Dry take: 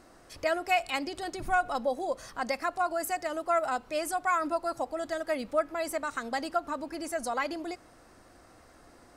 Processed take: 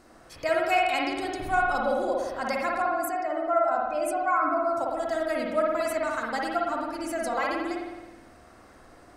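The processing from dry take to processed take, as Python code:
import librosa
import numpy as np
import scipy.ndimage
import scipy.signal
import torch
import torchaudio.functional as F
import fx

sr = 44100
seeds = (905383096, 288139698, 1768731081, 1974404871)

y = fx.spec_expand(x, sr, power=1.5, at=(2.82, 4.77))
y = fx.rev_spring(y, sr, rt60_s=1.2, pass_ms=(53,), chirp_ms=35, drr_db=-2.0)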